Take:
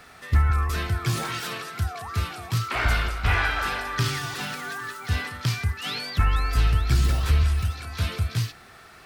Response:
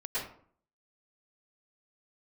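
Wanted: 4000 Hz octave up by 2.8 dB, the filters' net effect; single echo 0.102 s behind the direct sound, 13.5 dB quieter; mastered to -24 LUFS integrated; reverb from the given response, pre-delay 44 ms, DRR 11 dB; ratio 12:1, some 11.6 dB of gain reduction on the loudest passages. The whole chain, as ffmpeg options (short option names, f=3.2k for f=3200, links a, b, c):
-filter_complex "[0:a]equalizer=f=4k:t=o:g=3.5,acompressor=threshold=-27dB:ratio=12,aecho=1:1:102:0.211,asplit=2[a][b];[1:a]atrim=start_sample=2205,adelay=44[c];[b][c]afir=irnorm=-1:irlink=0,volume=-16dB[d];[a][d]amix=inputs=2:normalize=0,volume=7.5dB"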